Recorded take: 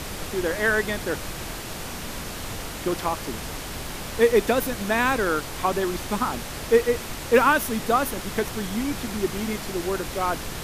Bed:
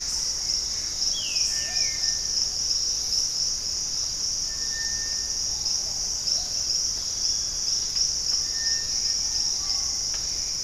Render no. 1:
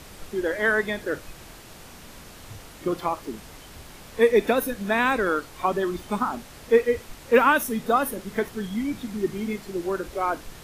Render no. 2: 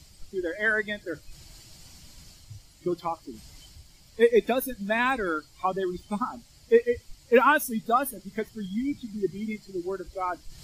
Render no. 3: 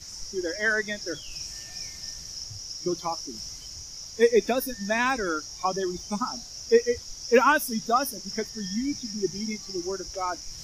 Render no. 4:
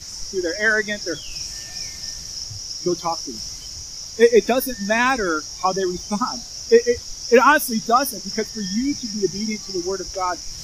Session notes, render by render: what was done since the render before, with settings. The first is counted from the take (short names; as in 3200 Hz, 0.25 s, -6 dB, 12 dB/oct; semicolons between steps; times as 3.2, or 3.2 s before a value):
noise print and reduce 11 dB
per-bin expansion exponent 1.5; reverse; upward compressor, threshold -40 dBFS; reverse
add bed -13 dB
gain +6.5 dB; limiter -2 dBFS, peak gain reduction 1.5 dB